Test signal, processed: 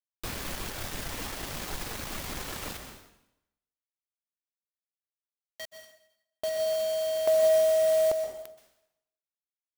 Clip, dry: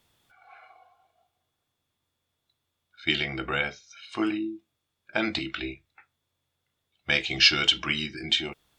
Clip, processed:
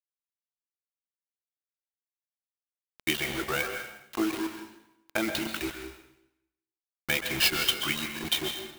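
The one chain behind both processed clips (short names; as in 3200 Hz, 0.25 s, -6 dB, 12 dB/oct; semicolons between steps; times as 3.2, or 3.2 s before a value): reverb removal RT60 1.3 s; dynamic EQ 370 Hz, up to +3 dB, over -39 dBFS, Q 1.7; compressor 1.5:1, threshold -29 dBFS; bit-crush 6-bit; plate-style reverb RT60 0.85 s, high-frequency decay 0.9×, pre-delay 0.115 s, DRR 5.5 dB; clock jitter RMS 0.025 ms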